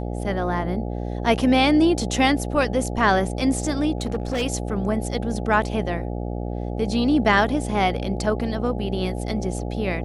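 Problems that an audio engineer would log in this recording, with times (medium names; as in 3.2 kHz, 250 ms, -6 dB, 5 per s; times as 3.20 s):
buzz 60 Hz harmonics 14 -28 dBFS
3.98–4.43 s: clipped -20 dBFS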